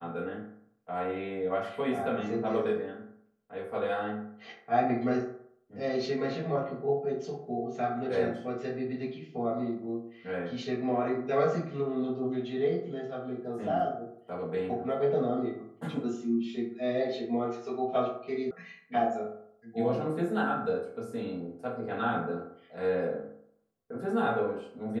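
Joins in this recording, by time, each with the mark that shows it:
18.51 sound cut off

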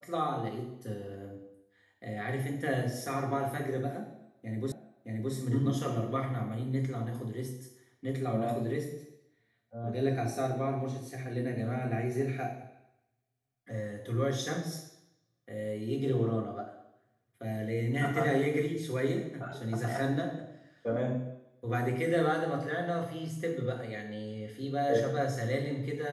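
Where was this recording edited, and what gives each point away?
4.72 repeat of the last 0.62 s

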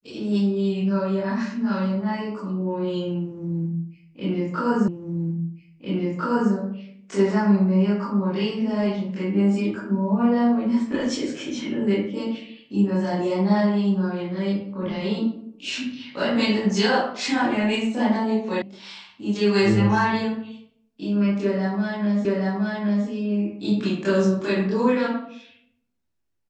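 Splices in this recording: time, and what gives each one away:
4.88 repeat of the last 1.65 s
18.62 sound cut off
22.25 repeat of the last 0.82 s

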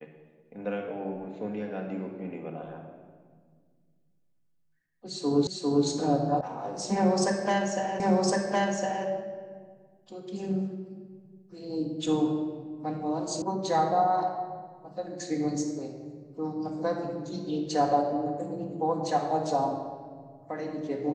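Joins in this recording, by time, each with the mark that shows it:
5.47 repeat of the last 0.4 s
6.41 sound cut off
8 repeat of the last 1.06 s
13.42 sound cut off

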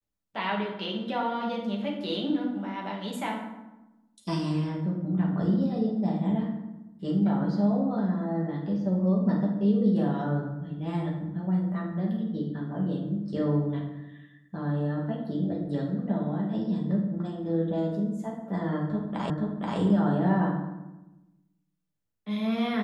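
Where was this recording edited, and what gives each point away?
19.3 repeat of the last 0.48 s

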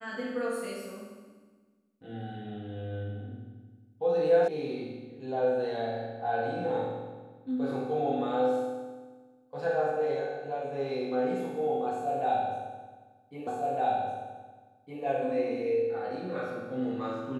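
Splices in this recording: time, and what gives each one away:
4.48 sound cut off
13.47 repeat of the last 1.56 s

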